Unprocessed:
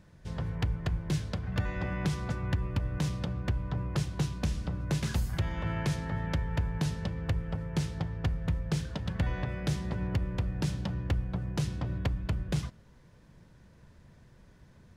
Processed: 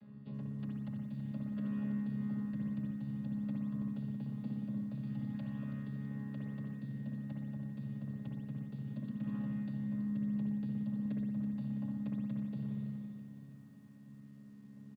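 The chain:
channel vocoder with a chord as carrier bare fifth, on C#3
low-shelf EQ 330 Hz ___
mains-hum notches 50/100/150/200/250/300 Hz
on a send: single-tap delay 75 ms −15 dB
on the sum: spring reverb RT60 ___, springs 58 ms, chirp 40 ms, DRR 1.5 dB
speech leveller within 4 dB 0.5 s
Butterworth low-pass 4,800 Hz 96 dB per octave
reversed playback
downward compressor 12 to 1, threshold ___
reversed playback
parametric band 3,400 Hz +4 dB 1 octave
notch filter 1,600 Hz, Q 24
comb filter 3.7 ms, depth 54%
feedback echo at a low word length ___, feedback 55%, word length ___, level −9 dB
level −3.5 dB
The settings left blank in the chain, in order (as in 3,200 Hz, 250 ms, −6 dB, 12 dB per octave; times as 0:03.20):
+9 dB, 1.1 s, −30 dBFS, 328 ms, 11 bits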